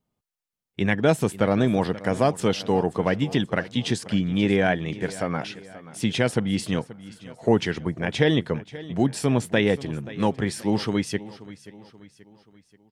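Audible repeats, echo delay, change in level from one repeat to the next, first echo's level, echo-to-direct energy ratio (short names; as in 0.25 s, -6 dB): 3, 0.531 s, -6.5 dB, -17.5 dB, -16.5 dB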